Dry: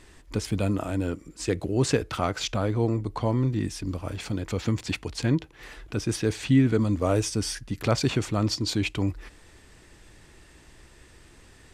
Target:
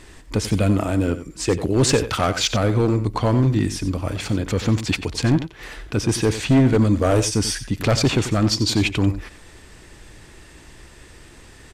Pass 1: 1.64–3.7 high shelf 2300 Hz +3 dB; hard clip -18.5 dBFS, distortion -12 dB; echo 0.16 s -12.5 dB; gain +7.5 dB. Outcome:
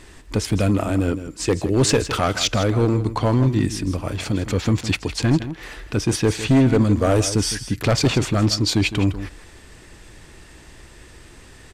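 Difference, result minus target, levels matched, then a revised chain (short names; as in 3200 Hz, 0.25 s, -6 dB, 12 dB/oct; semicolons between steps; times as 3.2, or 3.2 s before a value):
echo 69 ms late
1.64–3.7 high shelf 2300 Hz +3 dB; hard clip -18.5 dBFS, distortion -12 dB; echo 91 ms -12.5 dB; gain +7.5 dB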